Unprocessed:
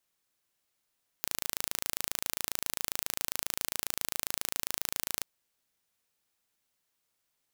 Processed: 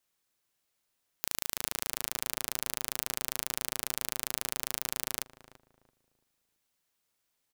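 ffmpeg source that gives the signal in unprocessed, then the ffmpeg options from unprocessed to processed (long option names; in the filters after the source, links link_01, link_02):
-f lavfi -i "aevalsrc='0.631*eq(mod(n,1609),0)':duration=4:sample_rate=44100"
-filter_complex "[0:a]asplit=2[link_01][link_02];[link_02]adelay=336,lowpass=frequency=850:poles=1,volume=-10dB,asplit=2[link_03][link_04];[link_04]adelay=336,lowpass=frequency=850:poles=1,volume=0.34,asplit=2[link_05][link_06];[link_06]adelay=336,lowpass=frequency=850:poles=1,volume=0.34,asplit=2[link_07][link_08];[link_08]adelay=336,lowpass=frequency=850:poles=1,volume=0.34[link_09];[link_01][link_03][link_05][link_07][link_09]amix=inputs=5:normalize=0"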